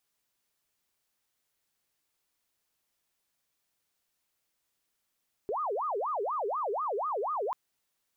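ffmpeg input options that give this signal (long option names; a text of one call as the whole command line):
ffmpeg -f lavfi -i "aevalsrc='0.0355*sin(2*PI*(822*t-428/(2*PI*4.1)*sin(2*PI*4.1*t)))':duration=2.04:sample_rate=44100" out.wav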